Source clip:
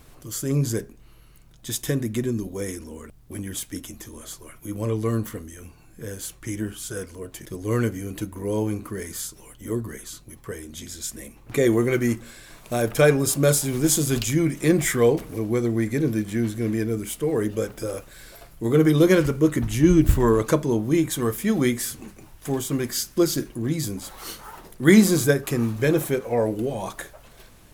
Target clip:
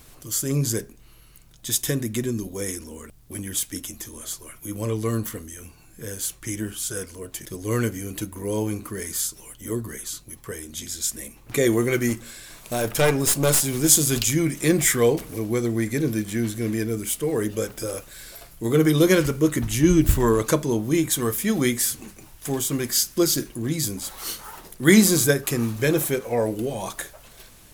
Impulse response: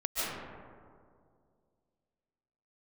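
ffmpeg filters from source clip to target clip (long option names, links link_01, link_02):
-filter_complex "[0:a]highshelf=frequency=2700:gain=8,asettb=1/sr,asplit=3[link_01][link_02][link_03];[link_01]atrim=end=12.094[link_04];[link_02]atrim=start=12.09:end=13.61,asetpts=PTS-STARTPTS,afade=type=in:duration=0.004:curve=qsin,afade=type=out:start_time=1.516:duration=0.004:curve=qsin,aeval=exprs='clip(val(0),-1,0.0841)':channel_layout=same[link_05];[link_03]atrim=start=13.606[link_06];[link_04][link_05]acrossfade=duration=0.004:curve1=hsin:curve2=qsin[link_07];[link_07][link_06]acrossfade=duration=0.004:curve1=qsin:curve2=hsin,volume=-1dB"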